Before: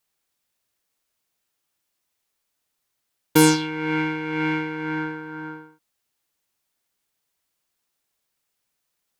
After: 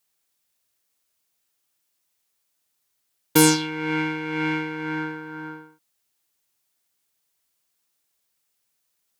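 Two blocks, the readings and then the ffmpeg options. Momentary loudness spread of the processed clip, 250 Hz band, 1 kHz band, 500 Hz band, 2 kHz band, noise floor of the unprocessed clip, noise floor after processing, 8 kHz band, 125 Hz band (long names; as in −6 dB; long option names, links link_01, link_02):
19 LU, −1.5 dB, −1.0 dB, −1.5 dB, −0.5 dB, −78 dBFS, −74 dBFS, +3.5 dB, −1.5 dB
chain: -af "highpass=42,highshelf=frequency=3800:gain=6,volume=-1.5dB"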